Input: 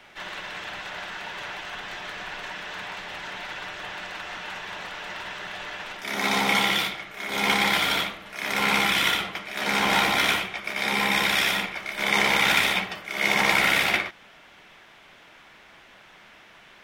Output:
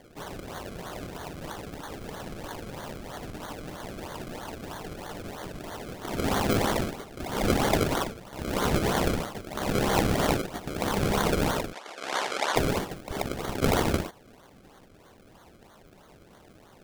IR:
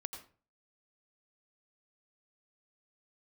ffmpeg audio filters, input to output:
-filter_complex "[0:a]asettb=1/sr,asplit=3[link_01][link_02][link_03];[link_01]atrim=end=13.224[link_04];[link_02]atrim=start=13.22:end=13.62,asetpts=PTS-STARTPTS,afade=type=in:duration=0.004:curve=qsin,afade=type=out:start_time=0.396:duration=0.004:curve=qsin,aderivative[link_05];[link_03]atrim=start=13.616[link_06];[link_04][link_05]acrossfade=duration=0.004:curve1=hsin:curve2=qsin[link_07];[link_07][link_06]acrossfade=duration=0.004:curve1=qsin:curve2=hsin,acrusher=samples=33:mix=1:aa=0.000001:lfo=1:lforange=33:lforate=3.1,asplit=3[link_08][link_09][link_10];[link_08]afade=type=out:start_time=11.72:duration=0.02[link_11];[link_09]highpass=730,lowpass=7300,afade=type=in:start_time=11.72:duration=0.02,afade=type=out:start_time=12.55:duration=0.02[link_12];[link_10]afade=type=in:start_time=12.55:duration=0.02[link_13];[link_11][link_12][link_13]amix=inputs=3:normalize=0,volume=-2.5dB"

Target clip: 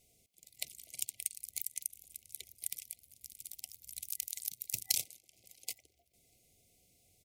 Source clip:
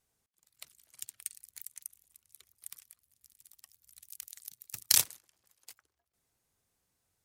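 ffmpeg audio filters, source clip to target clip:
ffmpeg -i in.wav -filter_complex "[0:a]afftfilt=real='re*(1-between(b*sr/4096,770,2000))':imag='im*(1-between(b*sr/4096,770,2000))':win_size=4096:overlap=0.75,acompressor=threshold=-44dB:ratio=4,asplit=2[link_01][link_02];[link_02]adelay=641.4,volume=-28dB,highshelf=frequency=4000:gain=-14.4[link_03];[link_01][link_03]amix=inputs=2:normalize=0,volume=11dB" out.wav

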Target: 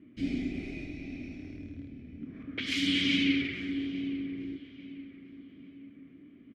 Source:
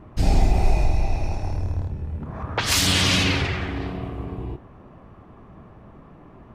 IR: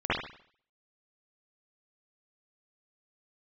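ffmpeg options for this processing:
-filter_complex "[0:a]asplit=3[link_01][link_02][link_03];[link_01]bandpass=frequency=270:width_type=q:width=8,volume=0dB[link_04];[link_02]bandpass=frequency=2290:width_type=q:width=8,volume=-6dB[link_05];[link_03]bandpass=frequency=3010:width_type=q:width=8,volume=-9dB[link_06];[link_04][link_05][link_06]amix=inputs=3:normalize=0,asplit=2[link_07][link_08];[link_08]adelay=846,lowpass=frequency=2200:poles=1,volume=-15dB,asplit=2[link_09][link_10];[link_10]adelay=846,lowpass=frequency=2200:poles=1,volume=0.5,asplit=2[link_11][link_12];[link_12]adelay=846,lowpass=frequency=2200:poles=1,volume=0.5,asplit=2[link_13][link_14];[link_14]adelay=846,lowpass=frequency=2200:poles=1,volume=0.5,asplit=2[link_15][link_16];[link_16]adelay=846,lowpass=frequency=2200:poles=1,volume=0.5[link_17];[link_07][link_09][link_11][link_13][link_15][link_17]amix=inputs=6:normalize=0,volume=3.5dB"

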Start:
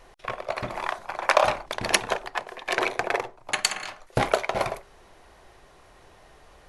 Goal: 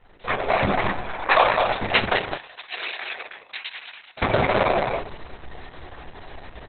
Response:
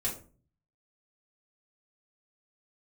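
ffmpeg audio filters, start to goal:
-filter_complex "[0:a]asplit=2[link_01][link_02];[1:a]atrim=start_sample=2205,adelay=8[link_03];[link_02][link_03]afir=irnorm=-1:irlink=0,volume=-4.5dB[link_04];[link_01][link_04]amix=inputs=2:normalize=0,flanger=delay=9.2:depth=8.1:regen=50:speed=1.6:shape=sinusoidal,asettb=1/sr,asplit=3[link_05][link_06][link_07];[link_05]atrim=end=0.644[link_08];[link_06]atrim=start=0.64:end=1.23,asetpts=PTS-STARTPTS,afade=type=in:duration=0.004:curve=qsin,afade=type=out:start_time=0.586:duration=0.004:curve=qsin,acrossover=split=280[link_09][link_10];[link_10]acompressor=threshold=-34dB:ratio=10[link_11];[link_09][link_11]amix=inputs=2:normalize=0[link_12];[link_07]atrim=start=1.226[link_13];[link_08][link_12]acrossfade=duration=0.004:curve1=hsin:curve2=qsin[link_14];[link_14][link_13]acrossfade=duration=0.004:curve1=qsin:curve2=hsin,asplit=2[link_15][link_16];[link_16]aecho=0:1:210:0.562[link_17];[link_15][link_17]amix=inputs=2:normalize=0,dynaudnorm=framelen=110:gausssize=5:maxgain=12dB,asettb=1/sr,asplit=3[link_18][link_19][link_20];[link_18]atrim=end=2.344[link_21];[link_19]atrim=start=2.34:end=4.22,asetpts=PTS-STARTPTS,afade=type=in:duration=0.004:curve=qsin,afade=type=out:start_time=1.876:duration=0.004:curve=qsin,aderivative[link_22];[link_20]atrim=start=4.216[link_23];[link_21][link_22]acrossfade=duration=0.004:curve1=hsin:curve2=qsin[link_24];[link_24][link_23]acrossfade=duration=0.004:curve1=qsin:curve2=hsin,aecho=1:1:19|41:0.335|0.133,volume=-1dB" -ar 48000 -c:a libopus -b:a 6k

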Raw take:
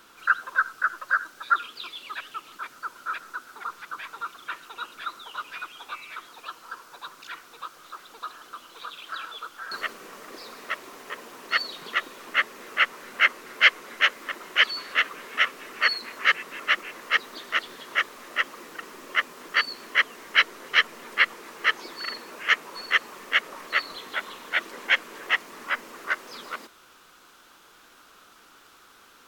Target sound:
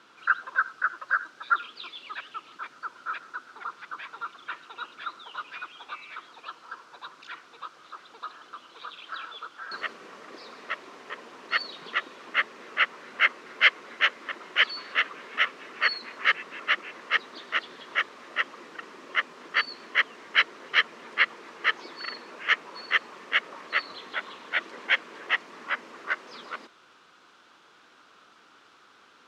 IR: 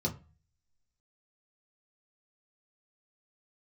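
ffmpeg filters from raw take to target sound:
-af "highpass=110,lowpass=4800,volume=-2dB"

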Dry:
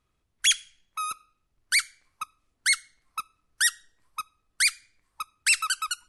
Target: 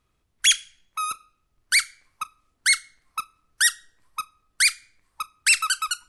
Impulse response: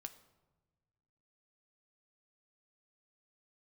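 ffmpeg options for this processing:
-filter_complex "[0:a]asplit=2[link_01][link_02];[1:a]atrim=start_sample=2205,asetrate=74970,aresample=44100,adelay=35[link_03];[link_02][link_03]afir=irnorm=-1:irlink=0,volume=-9.5dB[link_04];[link_01][link_04]amix=inputs=2:normalize=0,volume=3.5dB"

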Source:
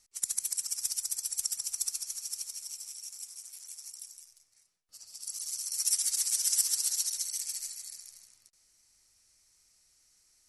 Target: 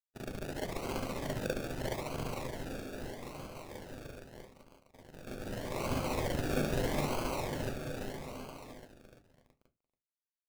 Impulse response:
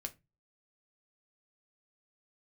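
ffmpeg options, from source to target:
-filter_complex "[0:a]aecho=1:1:343|686|1029|1372|1715|2058|2401|2744:0.562|0.337|0.202|0.121|0.0729|0.0437|0.0262|0.0157,aeval=exprs='sgn(val(0))*max(abs(val(0))-0.00316,0)':channel_layout=same,acrossover=split=6000[link_01][link_02];[link_02]acompressor=threshold=-44dB:ratio=4:attack=1:release=60[link_03];[link_01][link_03]amix=inputs=2:normalize=0,acrusher=samples=34:mix=1:aa=0.000001:lfo=1:lforange=20.4:lforate=0.8,asplit=2[link_04][link_05];[1:a]atrim=start_sample=2205,afade=type=out:start_time=0.16:duration=0.01,atrim=end_sample=7497,adelay=40[link_06];[link_05][link_06]afir=irnorm=-1:irlink=0,volume=6dB[link_07];[link_04][link_07]amix=inputs=2:normalize=0,volume=-2dB"

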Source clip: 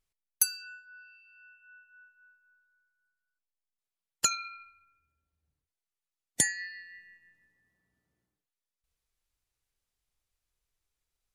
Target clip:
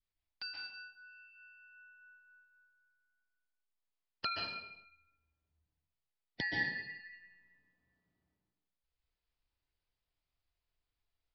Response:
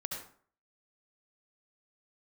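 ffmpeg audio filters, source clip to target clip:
-filter_complex "[0:a]adynamicequalizer=threshold=0.00224:dfrequency=720:dqfactor=0.72:tfrequency=720:tqfactor=0.72:attack=5:release=100:ratio=0.375:range=3.5:mode=boostabove:tftype=bell[link_01];[1:a]atrim=start_sample=2205,afade=type=out:start_time=0.37:duration=0.01,atrim=end_sample=16758,asetrate=23814,aresample=44100[link_02];[link_01][link_02]afir=irnorm=-1:irlink=0,aresample=11025,aresample=44100,volume=-7dB"

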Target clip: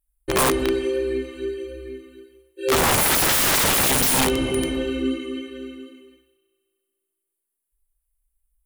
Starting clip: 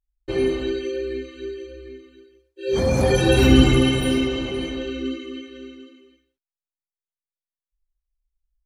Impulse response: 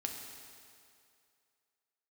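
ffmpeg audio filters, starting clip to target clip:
-filter_complex "[0:a]highshelf=frequency=7500:width_type=q:width=3:gain=12,aeval=exprs='(mod(6.68*val(0)+1,2)-1)/6.68':channel_layout=same,asplit=2[link_01][link_02];[1:a]atrim=start_sample=2205,lowpass=5600[link_03];[link_02][link_03]afir=irnorm=-1:irlink=0,volume=-12.5dB[link_04];[link_01][link_04]amix=inputs=2:normalize=0,volume=2dB"

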